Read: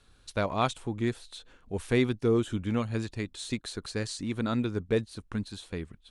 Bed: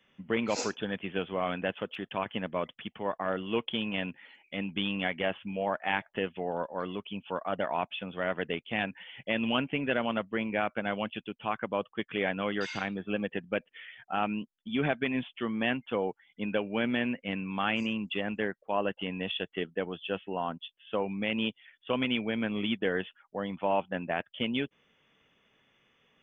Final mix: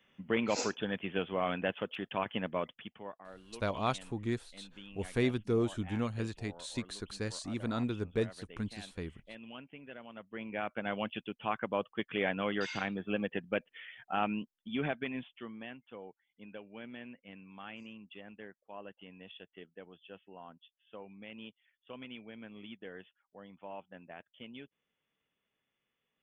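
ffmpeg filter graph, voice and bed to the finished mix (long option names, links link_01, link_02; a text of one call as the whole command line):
ffmpeg -i stem1.wav -i stem2.wav -filter_complex "[0:a]adelay=3250,volume=-5dB[link_01];[1:a]volume=16dB,afade=type=out:start_time=2.5:duration=0.7:silence=0.125893,afade=type=in:start_time=10.13:duration=0.99:silence=0.133352,afade=type=out:start_time=14.29:duration=1.4:silence=0.16788[link_02];[link_01][link_02]amix=inputs=2:normalize=0" out.wav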